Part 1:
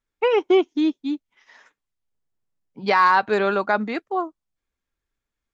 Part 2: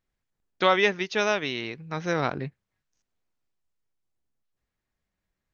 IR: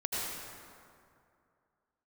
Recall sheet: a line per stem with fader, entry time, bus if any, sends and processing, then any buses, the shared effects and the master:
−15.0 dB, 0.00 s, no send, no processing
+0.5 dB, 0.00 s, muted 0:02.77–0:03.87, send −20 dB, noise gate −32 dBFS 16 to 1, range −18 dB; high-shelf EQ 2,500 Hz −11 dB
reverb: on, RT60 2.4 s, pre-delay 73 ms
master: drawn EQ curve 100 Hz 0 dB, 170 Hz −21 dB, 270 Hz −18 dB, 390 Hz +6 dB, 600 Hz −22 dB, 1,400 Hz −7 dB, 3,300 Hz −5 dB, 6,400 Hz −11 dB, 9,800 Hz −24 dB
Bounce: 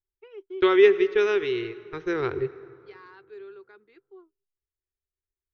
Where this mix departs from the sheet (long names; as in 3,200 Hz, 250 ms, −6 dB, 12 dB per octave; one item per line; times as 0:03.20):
stem 1 −15.0 dB → −23.5 dB
stem 2 +0.5 dB → +7.0 dB